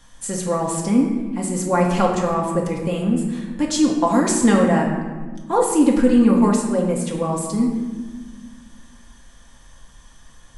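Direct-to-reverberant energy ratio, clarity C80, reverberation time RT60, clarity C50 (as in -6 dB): -2.0 dB, 5.5 dB, 1.4 s, 3.5 dB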